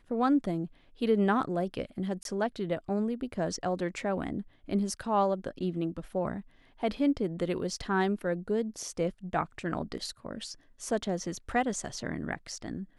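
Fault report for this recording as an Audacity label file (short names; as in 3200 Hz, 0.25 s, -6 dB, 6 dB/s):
2.230000	2.250000	gap 22 ms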